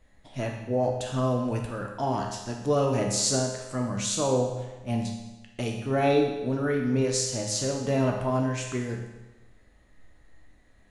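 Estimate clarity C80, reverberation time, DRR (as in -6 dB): 6.0 dB, 1.1 s, 0.5 dB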